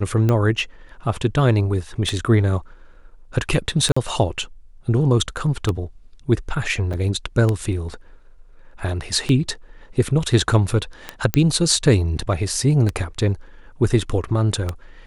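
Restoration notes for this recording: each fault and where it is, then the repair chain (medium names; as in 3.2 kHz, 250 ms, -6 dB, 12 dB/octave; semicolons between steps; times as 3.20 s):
tick 33 1/3 rpm -9 dBFS
3.92–3.96 s: dropout 45 ms
6.93–6.94 s: dropout 6.6 ms
11.34 s: pop -3 dBFS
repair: de-click; interpolate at 3.92 s, 45 ms; interpolate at 6.93 s, 6.6 ms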